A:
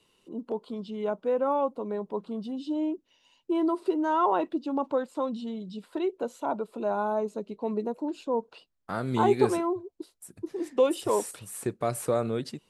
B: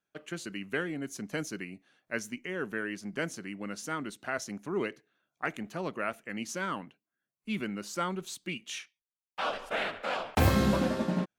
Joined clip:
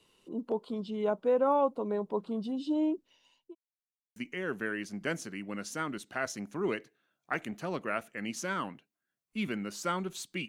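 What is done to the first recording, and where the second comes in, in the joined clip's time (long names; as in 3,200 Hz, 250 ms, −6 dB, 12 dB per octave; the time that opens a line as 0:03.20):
A
0:02.97–0:03.55: fade out equal-power
0:03.55–0:04.16: silence
0:04.16: continue with B from 0:02.28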